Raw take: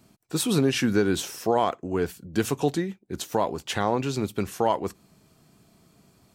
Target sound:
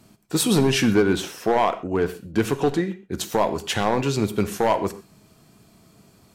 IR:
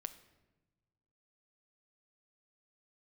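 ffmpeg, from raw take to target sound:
-filter_complex "[0:a]asettb=1/sr,asplit=3[link_01][link_02][link_03];[link_01]atrim=end=0.944[link_04];[link_02]atrim=start=0.94:end=3.12,asetpts=PTS-STARTPTS,afade=type=in:duration=0.004:curve=qsin,afade=type=out:start_time=2.176:duration=0.004:curve=qsin,bass=frequency=250:gain=-2,treble=frequency=4000:gain=-8[link_05];[link_03]atrim=start=3.116[link_06];[link_04][link_05]acrossfade=duration=0.004:curve1=hsin:curve2=qsin[link_07];[link_07][link_06]acrossfade=duration=0.004:curve1=qsin:curve2=hsin,asoftclip=type=hard:threshold=-17dB[link_08];[1:a]atrim=start_sample=2205,atrim=end_sample=4410,asetrate=31311,aresample=44100[link_09];[link_08][link_09]afir=irnorm=-1:irlink=0,volume=6.5dB"

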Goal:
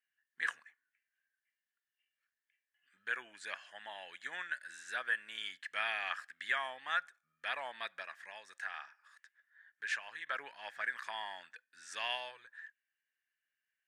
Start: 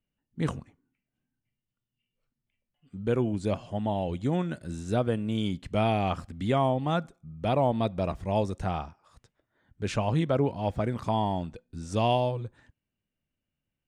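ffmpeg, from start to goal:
ffmpeg -i in.wav -filter_complex "[0:a]asettb=1/sr,asplit=3[link_01][link_02][link_03];[link_01]atrim=end=8.024[link_04];[link_02]atrim=start=8.02:end=10.27,asetpts=PTS-STARTPTS,afade=type=in:duration=0.004:curve=qsin,afade=type=out:start_time=2.246:duration=0.004:curve=qsin,acompressor=threshold=-30dB:ratio=6[link_05];[link_03]atrim=start=10.266[link_06];[link_04][link_05]acrossfade=duration=0.004:curve1=hsin:curve2=qsin[link_07];[link_07][link_06]acrossfade=duration=0.004:curve1=qsin:curve2=hsin,highpass=frequency=1700:width_type=q:width=13,volume=-5dB" out.wav

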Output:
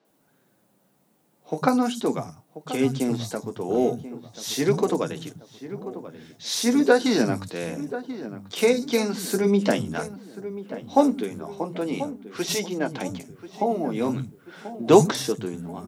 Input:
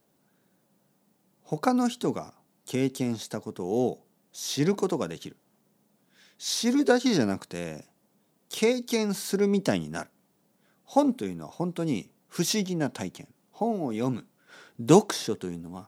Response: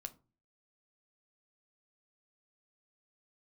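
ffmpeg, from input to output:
-filter_complex "[0:a]asettb=1/sr,asplit=3[link_01][link_02][link_03];[link_01]atrim=end=11.294[link_04];[link_02]atrim=start=11.29:end=13,asetpts=PTS-STARTPTS,afade=type=in:duration=0.004:curve=qsin,afade=type=out:start_time=1.706:duration=0.004:curve=qsin,bass=frequency=250:gain=-9,treble=frequency=4000:gain=-3[link_05];[link_03]atrim=start=12.996[link_06];[link_04][link_05]acrossfade=duration=0.004:curve1=hsin:curve2=qsin[link_07];[link_07][link_06]acrossfade=duration=0.004:curve1=qsin:curve2=hsin,asplit=2[link_08][link_09];[link_09]adelay=1036,lowpass=frequency=1600:poles=1,volume=-13dB,asplit=2[link_10][link_11];[link_11]adelay=1036,lowpass=frequency=1600:poles=1,volume=0.52,asplit=2[link_12][link_13];[link_13]adelay=1036,lowpass=frequency=1600:poles=1,volume=0.52,asplit=2[link_14][link_15];[link_15]adelay=1036,lowpass=frequency=1600:poles=1,volume=0.52,asplit=2[link_16][link_17];[link_17]adelay=1036,lowpass=frequency=1600:poles=1,volume=0.52[link_18];[link_10][link_12][link_14][link_16][link_18]amix=inputs=5:normalize=0[link_19];[link_08][link_19]amix=inputs=2:normalize=0,flanger=delay=6.2:depth=6.6:regen=-48:speed=0.39:shape=sinusoidal,acrossover=split=180|5400[link_20][link_21][link_22];[link_22]adelay=50[link_23];[link_20]adelay=100[link_24];[link_24][link_21][link_23]amix=inputs=3:normalize=0,volume=8.5dB"

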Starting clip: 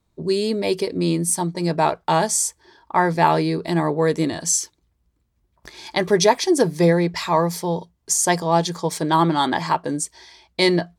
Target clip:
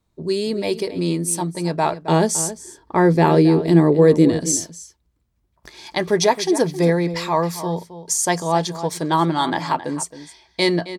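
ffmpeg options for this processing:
ffmpeg -i in.wav -filter_complex "[0:a]asettb=1/sr,asplit=3[link_01][link_02][link_03];[link_01]atrim=end=2.074[link_04];[link_02]atrim=start=2.07:end=4.56,asetpts=PTS-STARTPTS,afade=type=in:duration=0.004:curve=qsin,afade=type=out:start_time=2.486:duration=0.004:curve=qsin,lowshelf=frequency=580:width_type=q:width=1.5:gain=7.5[link_05];[link_03]atrim=start=4.556[link_06];[link_04][link_05]acrossfade=duration=0.004:curve1=hsin:curve2=qsin[link_07];[link_07][link_06]acrossfade=duration=0.004:curve1=qsin:curve2=hsin,asplit=2[link_08][link_09];[link_09]adelay=268.2,volume=-13dB,highshelf=frequency=4000:gain=-6.04[link_10];[link_08][link_10]amix=inputs=2:normalize=0,volume=-1dB" out.wav

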